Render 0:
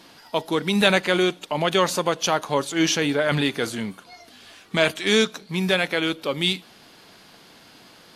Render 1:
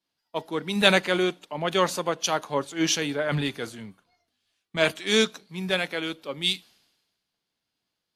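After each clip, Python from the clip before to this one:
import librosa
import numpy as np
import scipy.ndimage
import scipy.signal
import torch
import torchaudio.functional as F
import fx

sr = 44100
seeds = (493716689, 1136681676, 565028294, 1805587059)

y = fx.band_widen(x, sr, depth_pct=100)
y = F.gain(torch.from_numpy(y), -5.0).numpy()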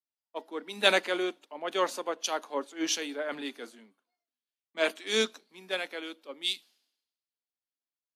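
y = scipy.signal.sosfilt(scipy.signal.ellip(4, 1.0, 60, 240.0, 'highpass', fs=sr, output='sos'), x)
y = fx.band_widen(y, sr, depth_pct=40)
y = F.gain(torch.from_numpy(y), -6.0).numpy()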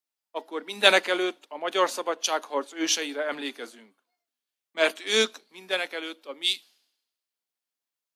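y = fx.low_shelf(x, sr, hz=170.0, db=-11.5)
y = F.gain(torch.from_numpy(y), 5.5).numpy()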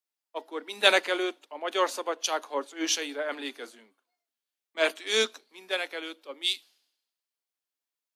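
y = scipy.signal.sosfilt(scipy.signal.butter(4, 240.0, 'highpass', fs=sr, output='sos'), x)
y = F.gain(torch.from_numpy(y), -2.5).numpy()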